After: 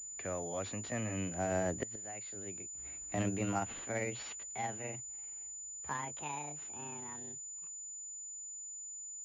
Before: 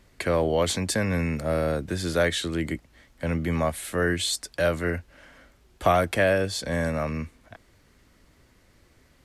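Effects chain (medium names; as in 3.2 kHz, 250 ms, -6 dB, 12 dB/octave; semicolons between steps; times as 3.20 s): pitch bend over the whole clip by +11.5 st starting unshifted; Doppler pass-by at 2.43 s, 16 m/s, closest 2.5 m; inverted gate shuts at -30 dBFS, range -26 dB; class-D stage that switches slowly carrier 7 kHz; trim +8 dB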